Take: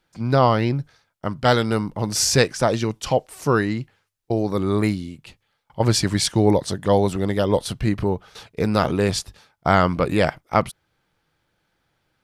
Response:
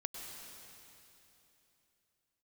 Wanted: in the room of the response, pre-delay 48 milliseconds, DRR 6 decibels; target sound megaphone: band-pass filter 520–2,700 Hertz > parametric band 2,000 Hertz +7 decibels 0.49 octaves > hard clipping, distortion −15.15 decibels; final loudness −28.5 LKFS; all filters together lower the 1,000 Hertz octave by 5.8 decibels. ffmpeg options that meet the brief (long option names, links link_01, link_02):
-filter_complex "[0:a]equalizer=frequency=1000:width_type=o:gain=-8,asplit=2[link_01][link_02];[1:a]atrim=start_sample=2205,adelay=48[link_03];[link_02][link_03]afir=irnorm=-1:irlink=0,volume=-5.5dB[link_04];[link_01][link_04]amix=inputs=2:normalize=0,highpass=520,lowpass=2700,equalizer=frequency=2000:width_type=o:width=0.49:gain=7,asoftclip=type=hard:threshold=-15dB,volume=-0.5dB"